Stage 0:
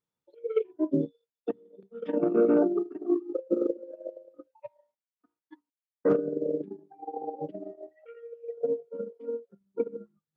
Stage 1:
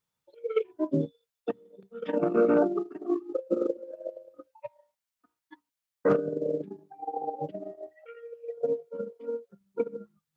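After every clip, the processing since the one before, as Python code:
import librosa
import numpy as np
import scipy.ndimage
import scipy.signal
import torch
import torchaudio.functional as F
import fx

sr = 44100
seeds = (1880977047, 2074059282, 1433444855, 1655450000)

y = fx.peak_eq(x, sr, hz=330.0, db=-9.5, octaves=1.6)
y = F.gain(torch.from_numpy(y), 7.0).numpy()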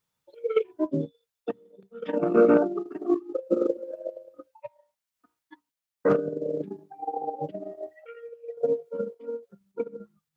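y = fx.tremolo_random(x, sr, seeds[0], hz=3.5, depth_pct=55)
y = F.gain(torch.from_numpy(y), 5.0).numpy()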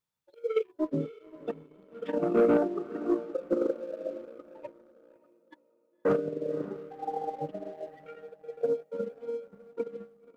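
y = fx.echo_diffused(x, sr, ms=551, feedback_pct=41, wet_db=-16)
y = fx.leveller(y, sr, passes=1)
y = F.gain(torch.from_numpy(y), -6.5).numpy()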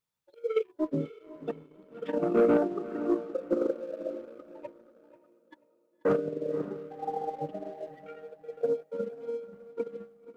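y = fx.echo_feedback(x, sr, ms=487, feedback_pct=26, wet_db=-17.5)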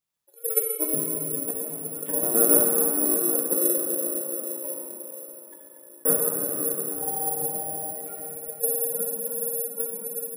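y = fx.rev_plate(x, sr, seeds[1], rt60_s=4.5, hf_ratio=0.85, predelay_ms=0, drr_db=-3.0)
y = (np.kron(y[::4], np.eye(4)[0]) * 4)[:len(y)]
y = F.gain(torch.from_numpy(y), -4.5).numpy()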